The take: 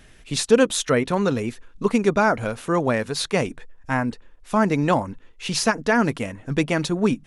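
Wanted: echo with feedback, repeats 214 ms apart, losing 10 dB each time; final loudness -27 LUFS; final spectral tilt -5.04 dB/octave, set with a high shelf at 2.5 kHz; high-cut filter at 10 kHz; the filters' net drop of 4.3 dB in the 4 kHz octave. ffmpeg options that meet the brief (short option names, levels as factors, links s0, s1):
-af "lowpass=10000,highshelf=f=2500:g=4,equalizer=f=4000:t=o:g=-9,aecho=1:1:214|428|642|856:0.316|0.101|0.0324|0.0104,volume=0.562"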